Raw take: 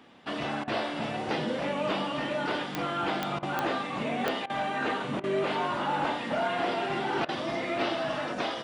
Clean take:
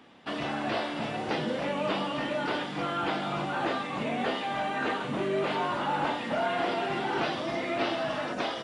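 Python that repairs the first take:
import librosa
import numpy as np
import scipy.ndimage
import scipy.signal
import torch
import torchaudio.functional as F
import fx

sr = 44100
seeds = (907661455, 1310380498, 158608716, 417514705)

y = fx.fix_declip(x, sr, threshold_db=-19.0)
y = fx.fix_declick_ar(y, sr, threshold=10.0)
y = fx.fix_interpolate(y, sr, at_s=(0.64, 3.39, 4.46, 5.2, 7.25), length_ms=36.0)
y = fx.fix_echo_inverse(y, sr, delay_ms=90, level_db=-15.5)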